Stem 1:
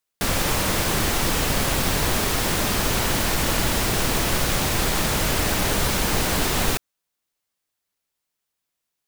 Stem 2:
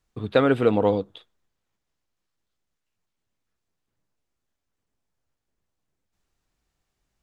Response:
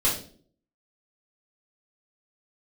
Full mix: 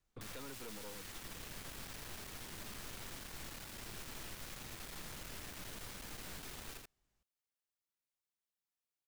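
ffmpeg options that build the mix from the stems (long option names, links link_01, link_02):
-filter_complex "[0:a]volume=-11dB,asplit=2[link_01][link_02];[link_02]volume=-12.5dB[link_03];[1:a]volume=-2dB[link_04];[link_03]aecho=0:1:83:1[link_05];[link_01][link_04][link_05]amix=inputs=3:normalize=0,acrossover=split=460|1100|3400[link_06][link_07][link_08][link_09];[link_06]acompressor=threshold=-38dB:ratio=4[link_10];[link_07]acompressor=threshold=-52dB:ratio=4[link_11];[link_08]acompressor=threshold=-42dB:ratio=4[link_12];[link_09]acompressor=threshold=-39dB:ratio=4[link_13];[link_10][link_11][link_12][link_13]amix=inputs=4:normalize=0,aeval=exprs='(tanh(100*val(0)+0.75)-tanh(0.75))/100':channel_layout=same,alimiter=level_in=17dB:limit=-24dB:level=0:latency=1:release=19,volume=-17dB"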